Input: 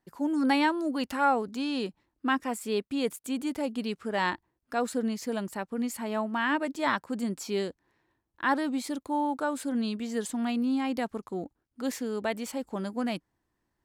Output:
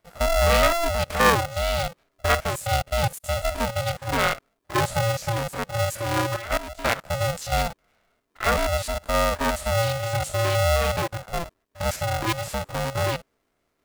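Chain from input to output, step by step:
spectrum averaged block by block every 50 ms
0:06.36–0:07.03: output level in coarse steps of 14 dB
ring modulator with a square carrier 340 Hz
level +7 dB

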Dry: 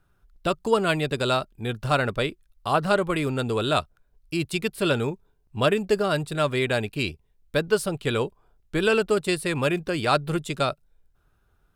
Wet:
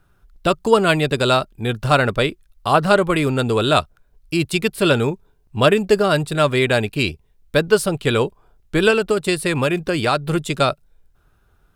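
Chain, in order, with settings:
0:08.90–0:10.37: downward compressor, threshold −21 dBFS, peak gain reduction 6 dB
level +7 dB

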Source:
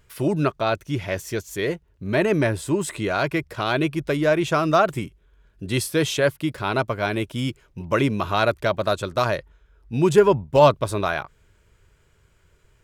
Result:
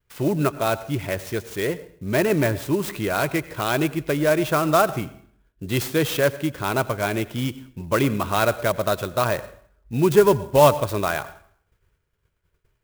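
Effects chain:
downward expander −49 dBFS
dense smooth reverb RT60 0.59 s, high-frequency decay 0.8×, pre-delay 75 ms, DRR 16 dB
converter with an unsteady clock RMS 0.032 ms

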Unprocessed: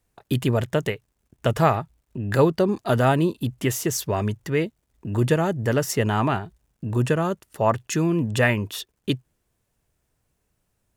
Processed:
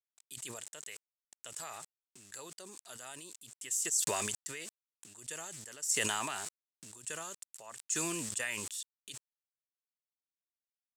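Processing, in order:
centre clipping without the shift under −42 dBFS
resonant band-pass 7,900 Hz, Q 4.8
level that may fall only so fast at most 23 dB per second
level +3 dB

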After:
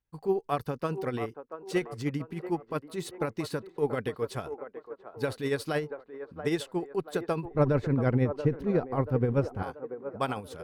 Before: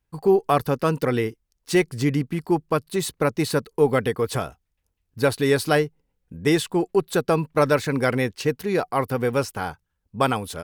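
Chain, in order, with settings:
0:07.45–0:09.63: spectral tilt −4 dB per octave
delay with a band-pass on its return 682 ms, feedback 45%, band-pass 710 Hz, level −8.5 dB
amplitude tremolo 13 Hz, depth 50%
high-shelf EQ 7,400 Hz −7 dB
level −8 dB

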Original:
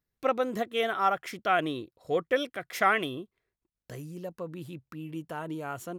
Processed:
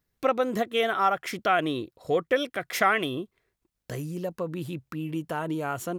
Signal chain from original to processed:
downward compressor 1.5 to 1, threshold −36 dBFS, peak gain reduction 6.5 dB
level +7.5 dB

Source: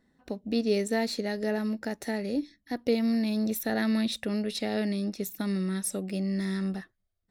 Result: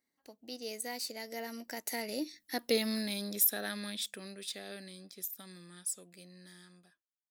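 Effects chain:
fade-out on the ending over 1.00 s
source passing by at 0:02.58, 26 m/s, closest 12 metres
RIAA equalisation recording

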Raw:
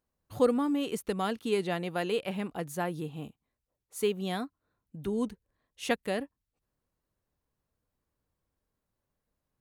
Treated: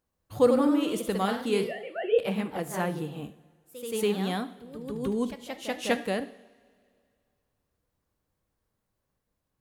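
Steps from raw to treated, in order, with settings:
0:01.64–0:02.19: three sine waves on the formant tracks
coupled-rooms reverb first 0.72 s, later 2.4 s, from −17 dB, DRR 11 dB
delay with pitch and tempo change per echo 120 ms, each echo +1 semitone, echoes 3, each echo −6 dB
level +2 dB

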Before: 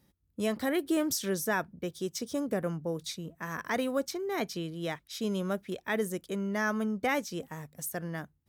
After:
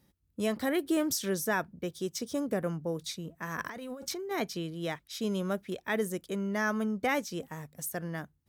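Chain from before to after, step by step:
0:03.58–0:04.31: compressor whose output falls as the input rises −39 dBFS, ratio −1

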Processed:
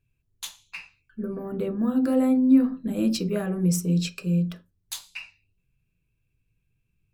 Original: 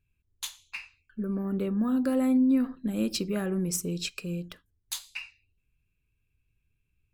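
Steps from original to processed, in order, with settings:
on a send: parametric band 580 Hz +5 dB 0.27 octaves + convolution reverb RT60 0.20 s, pre-delay 3 ms, DRR 4 dB

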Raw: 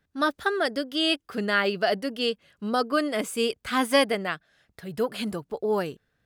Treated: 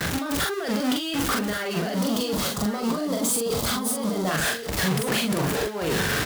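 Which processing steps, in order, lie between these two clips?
converter with a step at zero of −23.5 dBFS
high-pass filter 110 Hz 6 dB per octave
noise gate with hold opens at −25 dBFS
0:01.95–0:04.31: flat-topped bell 2,100 Hz −10.5 dB 1.2 octaves
compressor whose output falls as the input rises −28 dBFS, ratio −1
double-tracking delay 43 ms −2.5 dB
single-tap delay 1,130 ms −9 dB

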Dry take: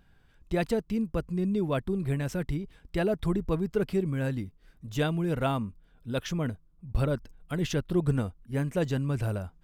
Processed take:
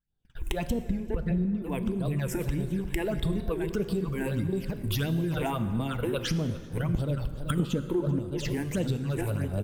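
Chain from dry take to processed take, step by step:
delay that plays each chunk backwards 474 ms, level −8 dB
camcorder AGC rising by 47 dB per second
high-shelf EQ 7,000 Hz +5.5 dB
all-pass phaser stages 8, 1.6 Hz, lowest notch 160–2,100 Hz
0:00.70–0:01.62: bass and treble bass +11 dB, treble −13 dB
0:07.60–0:08.19: hollow resonant body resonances 240/500/890 Hz, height 16 dB, ringing for 20 ms
single-tap delay 388 ms −18.5 dB
downward compressor 8 to 1, threshold −31 dBFS, peak gain reduction 18 dB
noise gate −43 dBFS, range −34 dB
dense smooth reverb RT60 2.3 s, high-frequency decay 0.65×, DRR 10 dB
wow of a warped record 45 rpm, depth 100 cents
level +5.5 dB

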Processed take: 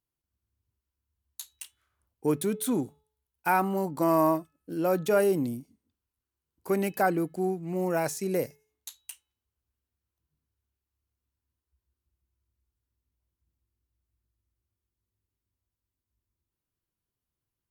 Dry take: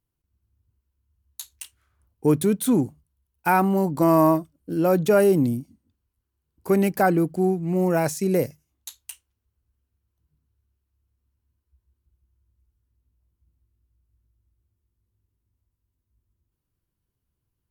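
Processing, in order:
low-shelf EQ 220 Hz −9.5 dB
hum removal 430 Hz, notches 9
level −4 dB

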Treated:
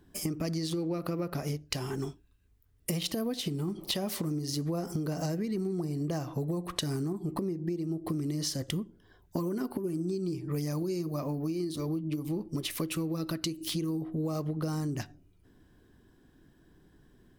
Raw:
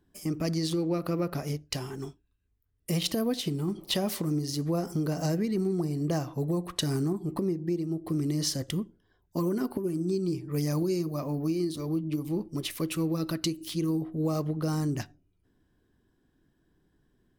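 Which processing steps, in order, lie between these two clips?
downward compressor 6 to 1, threshold −39 dBFS, peak gain reduction 14 dB
level +8.5 dB

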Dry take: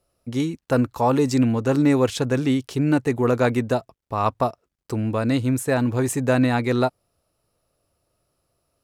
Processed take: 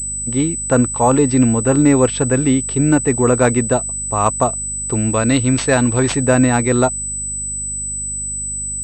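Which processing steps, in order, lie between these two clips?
mains hum 50 Hz, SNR 17 dB
0:04.93–0:06.17: high-shelf EQ 2,700 Hz +11.5 dB
switching amplifier with a slow clock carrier 8,000 Hz
level +5.5 dB

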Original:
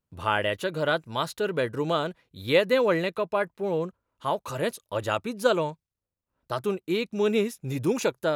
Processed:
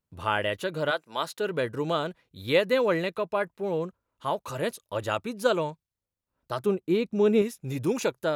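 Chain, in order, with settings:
0:00.90–0:01.49: high-pass filter 560 Hz → 150 Hz 12 dB per octave
0:06.66–0:07.42: tilt shelving filter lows +5 dB, about 1,100 Hz
level −1.5 dB

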